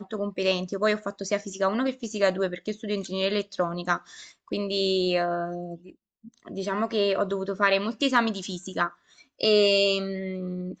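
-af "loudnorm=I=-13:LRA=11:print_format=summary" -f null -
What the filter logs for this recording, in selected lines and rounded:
Input Integrated:    -26.1 LUFS
Input True Peak:      -8.2 dBTP
Input LRA:             3.8 LU
Input Threshold:     -36.5 LUFS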